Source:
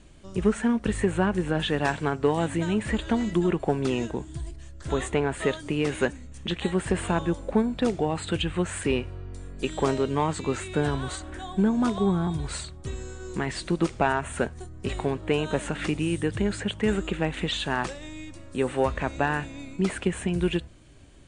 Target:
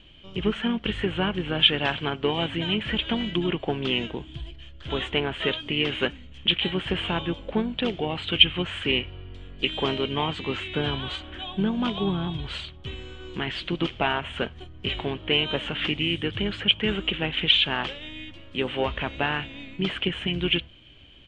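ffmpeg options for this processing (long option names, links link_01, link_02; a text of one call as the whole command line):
ffmpeg -i in.wav -filter_complex "[0:a]lowpass=frequency=3100:width_type=q:width=11,asplit=2[link_01][link_02];[link_02]asetrate=35002,aresample=44100,atempo=1.25992,volume=-11dB[link_03];[link_01][link_03]amix=inputs=2:normalize=0,volume=-3dB" out.wav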